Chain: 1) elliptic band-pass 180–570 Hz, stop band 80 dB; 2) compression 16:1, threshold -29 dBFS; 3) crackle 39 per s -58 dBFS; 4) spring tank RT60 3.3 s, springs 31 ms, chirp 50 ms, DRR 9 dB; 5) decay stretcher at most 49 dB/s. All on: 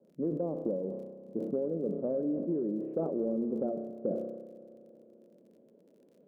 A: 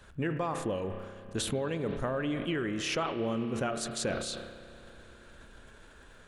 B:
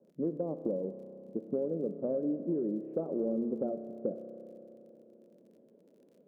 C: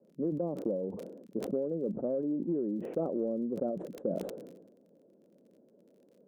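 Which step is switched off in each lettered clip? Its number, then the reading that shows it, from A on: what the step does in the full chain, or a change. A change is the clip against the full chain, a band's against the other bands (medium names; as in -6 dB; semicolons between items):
1, 1 kHz band +13.5 dB; 5, momentary loudness spread change +5 LU; 4, momentary loudness spread change -1 LU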